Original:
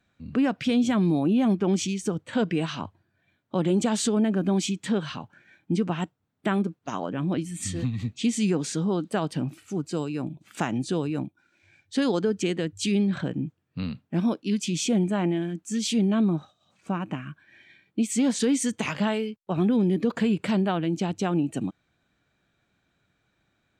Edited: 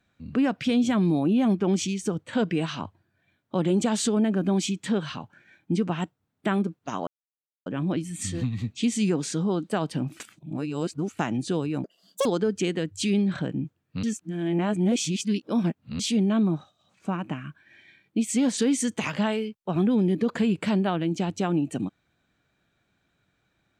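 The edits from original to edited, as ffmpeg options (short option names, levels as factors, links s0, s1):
-filter_complex "[0:a]asplit=8[s0][s1][s2][s3][s4][s5][s6][s7];[s0]atrim=end=7.07,asetpts=PTS-STARTPTS,afade=t=out:st=7.066:d=0.004:c=hsin,apad=pad_dur=0.59[s8];[s1]atrim=start=7.07:end=9.612,asetpts=PTS-STARTPTS,afade=t=in:d=0.004:c=hsin[s9];[s2]atrim=start=9.608:end=10.602,asetpts=PTS-STARTPTS,areverse[s10];[s3]atrim=start=10.598:end=11.254[s11];[s4]atrim=start=11.25:end=12.07,asetpts=PTS-STARTPTS,asetrate=87318,aresample=44100[s12];[s5]atrim=start=12.066:end=13.852[s13];[s6]atrim=start=13.848:end=15.812,asetpts=PTS-STARTPTS,areverse[s14];[s7]atrim=start=15.808[s15];[s8][s9]concat=n=2:v=0:a=1[s16];[s16][s10]acrossfade=d=0.004:c1=hsin:c2=hsin[s17];[s17][s11]acrossfade=d=0.004:c1=hsin:c2=hsin[s18];[s18][s12]acrossfade=d=0.004:c1=hsin:c2=hsin[s19];[s19][s13]acrossfade=d=0.004:c1=hsin:c2=hsin[s20];[s20][s14]acrossfade=d=0.004:c1=hsin:c2=hsin[s21];[s21][s15]acrossfade=d=0.004:c1=hsin:c2=hsin"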